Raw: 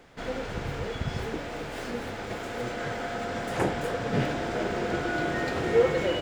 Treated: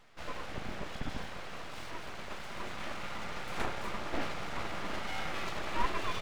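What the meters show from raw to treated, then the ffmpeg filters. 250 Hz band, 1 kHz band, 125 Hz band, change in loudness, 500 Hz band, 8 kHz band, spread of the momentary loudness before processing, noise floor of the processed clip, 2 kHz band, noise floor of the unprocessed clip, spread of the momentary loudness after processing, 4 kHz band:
-12.0 dB, -5.0 dB, -12.5 dB, -9.5 dB, -15.5 dB, -5.0 dB, 10 LU, -42 dBFS, -7.0 dB, -37 dBFS, 9 LU, -4.0 dB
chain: -af "afftfilt=real='re*(1-between(b*sr/4096,210,470))':imag='im*(1-between(b*sr/4096,210,470))':win_size=4096:overlap=0.75,highshelf=f=6.2k:g=-8.5,aeval=exprs='abs(val(0))':c=same,volume=-3.5dB"

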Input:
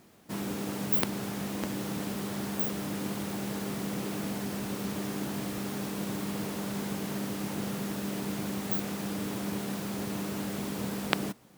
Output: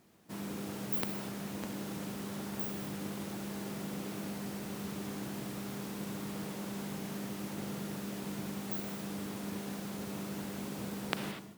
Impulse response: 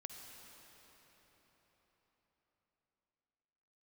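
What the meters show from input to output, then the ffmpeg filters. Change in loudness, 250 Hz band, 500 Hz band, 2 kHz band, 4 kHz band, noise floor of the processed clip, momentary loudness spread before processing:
-6.0 dB, -6.0 dB, -6.0 dB, -6.0 dB, -6.0 dB, -43 dBFS, 4 LU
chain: -filter_complex "[1:a]atrim=start_sample=2205,afade=t=out:st=0.38:d=0.01,atrim=end_sample=17199,asetrate=57330,aresample=44100[a];[0:a][a]afir=irnorm=-1:irlink=0,volume=1dB"

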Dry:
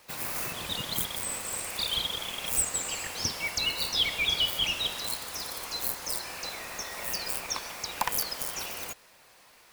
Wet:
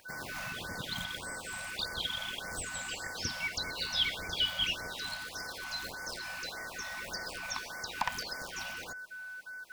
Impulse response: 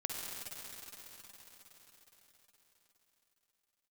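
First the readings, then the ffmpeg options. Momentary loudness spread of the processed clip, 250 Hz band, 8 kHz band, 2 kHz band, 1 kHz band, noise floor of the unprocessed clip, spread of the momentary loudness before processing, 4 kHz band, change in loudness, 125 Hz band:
9 LU, -3.5 dB, -10.5 dB, 0.0 dB, -3.5 dB, -57 dBFS, 10 LU, -5.0 dB, -6.0 dB, -3.0 dB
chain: -filter_complex "[0:a]acrossover=split=6000[a][b];[b]acompressor=threshold=-48dB:ratio=4:attack=1:release=60[c];[a][c]amix=inputs=2:normalize=0,aeval=exprs='val(0)+0.0126*sin(2*PI*1500*n/s)':c=same,afftfilt=real='re*(1-between(b*sr/1024,350*pow(3300/350,0.5+0.5*sin(2*PI*1.7*pts/sr))/1.41,350*pow(3300/350,0.5+0.5*sin(2*PI*1.7*pts/sr))*1.41))':imag='im*(1-between(b*sr/1024,350*pow(3300/350,0.5+0.5*sin(2*PI*1.7*pts/sr))/1.41,350*pow(3300/350,0.5+0.5*sin(2*PI*1.7*pts/sr))*1.41))':win_size=1024:overlap=0.75,volume=-3dB"

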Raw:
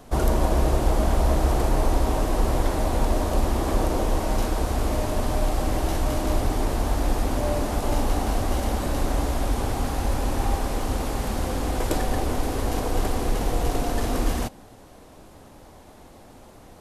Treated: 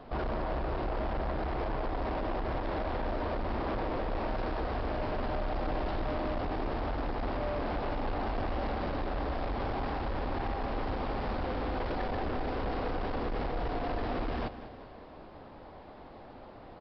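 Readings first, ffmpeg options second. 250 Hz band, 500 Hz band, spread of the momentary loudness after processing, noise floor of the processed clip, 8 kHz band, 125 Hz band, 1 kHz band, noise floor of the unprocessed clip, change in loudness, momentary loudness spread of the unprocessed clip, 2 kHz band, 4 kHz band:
-8.5 dB, -7.0 dB, 15 LU, -49 dBFS, under -35 dB, -11.5 dB, -6.0 dB, -48 dBFS, -9.0 dB, 4 LU, -5.0 dB, -11.0 dB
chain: -af "lowpass=f=1.4k:p=1,lowshelf=f=360:g=-8,alimiter=limit=-21dB:level=0:latency=1:release=107,aresample=11025,asoftclip=type=tanh:threshold=-32.5dB,aresample=44100,aecho=1:1:195|390|585|780|975:0.2|0.108|0.0582|0.0314|0.017,volume=3dB"

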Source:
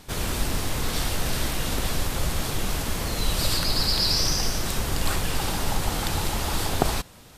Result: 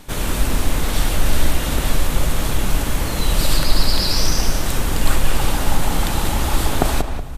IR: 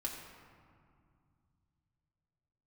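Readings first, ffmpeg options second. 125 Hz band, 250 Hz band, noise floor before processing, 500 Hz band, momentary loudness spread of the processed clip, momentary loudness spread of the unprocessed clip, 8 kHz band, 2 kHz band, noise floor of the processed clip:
+6.5 dB, +6.5 dB, -48 dBFS, +5.5 dB, 4 LU, 6 LU, +3.5 dB, +5.0 dB, -23 dBFS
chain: -filter_complex "[0:a]equalizer=f=4.9k:w=2.2:g=-4.5,asoftclip=type=tanh:threshold=-4.5dB,asplit=2[a][b];[b]adelay=186,lowpass=f=1.9k:p=1,volume=-6.5dB,asplit=2[c][d];[d]adelay=186,lowpass=f=1.9k:p=1,volume=0.33,asplit=2[e][f];[f]adelay=186,lowpass=f=1.9k:p=1,volume=0.33,asplit=2[g][h];[h]adelay=186,lowpass=f=1.9k:p=1,volume=0.33[i];[a][c][e][g][i]amix=inputs=5:normalize=0,asplit=2[j][k];[1:a]atrim=start_sample=2205,lowshelf=f=130:g=11[l];[k][l]afir=irnorm=-1:irlink=0,volume=-12.5dB[m];[j][m]amix=inputs=2:normalize=0,volume=3.5dB"

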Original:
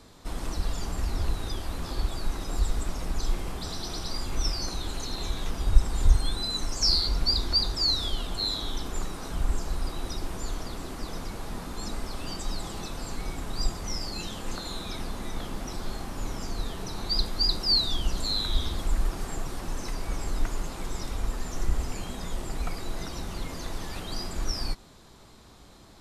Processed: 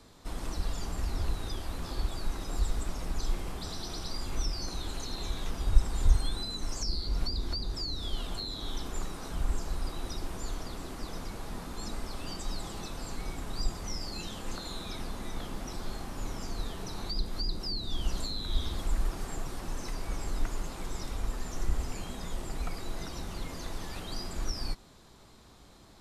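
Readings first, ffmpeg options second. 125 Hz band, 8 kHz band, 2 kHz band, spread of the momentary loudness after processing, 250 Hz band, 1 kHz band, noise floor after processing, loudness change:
-3.5 dB, -4.5 dB, -4.0 dB, 7 LU, -3.5 dB, -4.0 dB, -55 dBFS, -6.0 dB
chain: -filter_complex "[0:a]acrossover=split=460[a][b];[b]acompressor=threshold=-33dB:ratio=6[c];[a][c]amix=inputs=2:normalize=0,volume=-3.5dB"

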